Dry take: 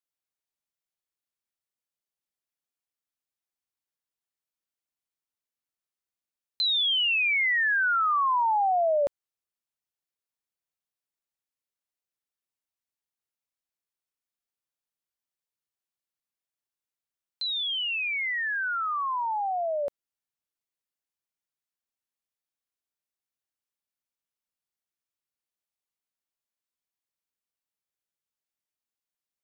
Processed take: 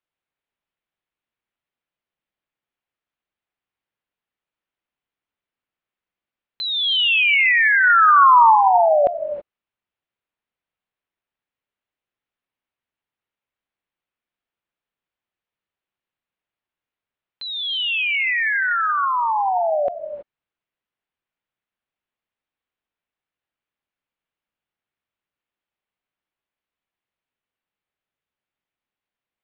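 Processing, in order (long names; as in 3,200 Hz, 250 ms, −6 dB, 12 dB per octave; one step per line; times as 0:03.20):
low-pass filter 3,200 Hz 24 dB per octave
0:07.83–0:08.55: dynamic equaliser 1,000 Hz, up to +5 dB, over −36 dBFS, Q 1.5
reverb whose tail is shaped and stops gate 350 ms rising, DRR 8 dB
level +8 dB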